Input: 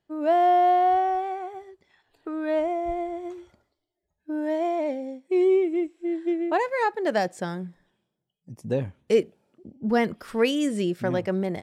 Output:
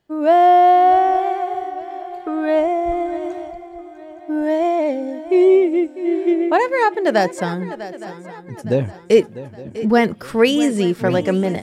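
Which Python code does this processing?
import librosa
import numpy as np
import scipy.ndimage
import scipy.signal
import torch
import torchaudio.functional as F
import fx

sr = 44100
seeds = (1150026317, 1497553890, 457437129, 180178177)

y = fx.echo_swing(x, sr, ms=865, ratio=3, feedback_pct=41, wet_db=-15)
y = y * librosa.db_to_amplitude(8.0)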